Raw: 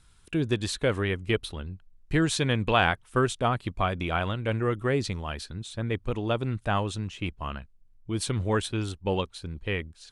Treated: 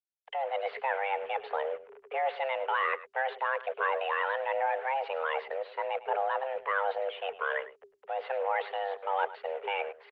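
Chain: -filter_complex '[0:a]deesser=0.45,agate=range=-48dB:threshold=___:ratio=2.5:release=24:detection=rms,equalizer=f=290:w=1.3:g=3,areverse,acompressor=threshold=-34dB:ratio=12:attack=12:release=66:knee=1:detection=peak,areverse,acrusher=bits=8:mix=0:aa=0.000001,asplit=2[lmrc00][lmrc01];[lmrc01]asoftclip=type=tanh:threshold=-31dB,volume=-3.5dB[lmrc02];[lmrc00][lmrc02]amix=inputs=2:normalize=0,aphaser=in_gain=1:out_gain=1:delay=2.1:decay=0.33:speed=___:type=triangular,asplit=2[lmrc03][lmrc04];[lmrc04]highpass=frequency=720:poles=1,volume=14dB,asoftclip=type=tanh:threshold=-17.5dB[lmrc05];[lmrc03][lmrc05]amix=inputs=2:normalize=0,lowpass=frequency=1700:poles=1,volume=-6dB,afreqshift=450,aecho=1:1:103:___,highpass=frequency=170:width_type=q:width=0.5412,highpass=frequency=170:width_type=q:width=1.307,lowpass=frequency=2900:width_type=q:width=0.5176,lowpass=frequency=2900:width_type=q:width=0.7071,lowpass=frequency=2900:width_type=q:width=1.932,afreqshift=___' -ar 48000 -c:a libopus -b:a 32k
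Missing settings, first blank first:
-49dB, 1.3, 0.158, -56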